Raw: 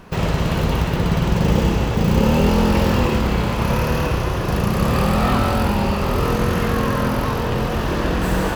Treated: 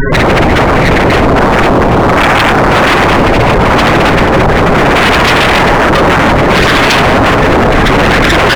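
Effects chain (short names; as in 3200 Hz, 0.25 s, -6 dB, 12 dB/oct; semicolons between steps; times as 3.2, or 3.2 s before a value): graphic EQ 125/1000/2000/4000/8000 Hz -4/-7/+10/-11/-6 dB; careless resampling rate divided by 6×, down filtered, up hold; comb 7.4 ms, depth 93%; early reflections 46 ms -17.5 dB, 56 ms -13.5 dB; upward compressor, threshold -31 dBFS; bell 200 Hz -5 dB 1.5 oct; notches 50/100 Hz; loudest bins only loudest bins 16; wavefolder -26 dBFS; maximiser +35.5 dB; gain -1 dB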